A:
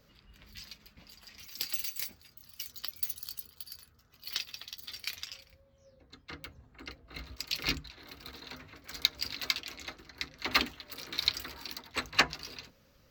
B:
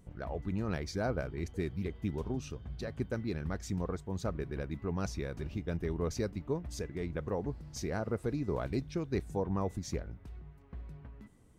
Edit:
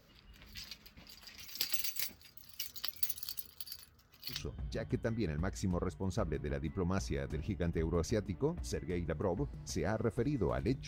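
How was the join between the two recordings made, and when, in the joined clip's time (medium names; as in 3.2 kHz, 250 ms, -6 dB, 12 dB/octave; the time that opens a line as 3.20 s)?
A
4.35 s: go over to B from 2.42 s, crossfade 0.14 s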